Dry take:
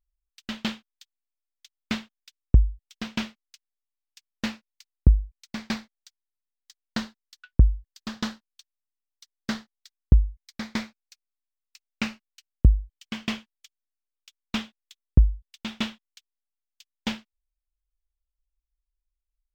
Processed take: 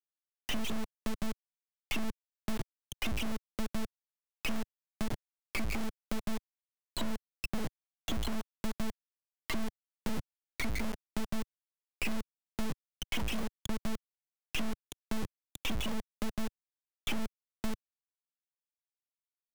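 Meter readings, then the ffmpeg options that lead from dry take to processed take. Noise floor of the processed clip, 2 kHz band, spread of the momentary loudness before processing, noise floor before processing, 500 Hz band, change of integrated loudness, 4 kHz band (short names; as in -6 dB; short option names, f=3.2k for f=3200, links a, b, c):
under -85 dBFS, -2.5 dB, 16 LU, under -85 dBFS, +1.0 dB, -11.5 dB, -3.5 dB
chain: -filter_complex "[0:a]asuperstop=centerf=1600:order=4:qfactor=2.1,acrossover=split=160|1100[a][b][c];[b]adelay=50[d];[a]adelay=570[e];[e][d][c]amix=inputs=3:normalize=0,asplit=2[f][g];[g]highpass=f=720:p=1,volume=46dB,asoftclip=type=tanh:threshold=-5.5dB[h];[f][h]amix=inputs=2:normalize=0,lowpass=f=3.8k:p=1,volume=-6dB,highpass=f=73:p=1,afftfilt=real='re*gte(hypot(re,im),0.501)':imag='im*gte(hypot(re,im),0.501)':win_size=1024:overlap=0.75,anlmdn=3.98,agate=range=-18dB:threshold=-36dB:ratio=16:detection=peak,flanger=delay=1.5:depth=4.7:regen=-68:speed=1.2:shape=sinusoidal,aresample=16000,asoftclip=type=tanh:threshold=-28dB,aresample=44100,acrusher=bits=3:dc=4:mix=0:aa=0.000001,acrossover=split=110|2700[i][j][k];[i]acompressor=threshold=-39dB:ratio=4[l];[j]acompressor=threshold=-44dB:ratio=4[m];[k]acompressor=threshold=-52dB:ratio=4[n];[l][m][n]amix=inputs=3:normalize=0,volume=7.5dB"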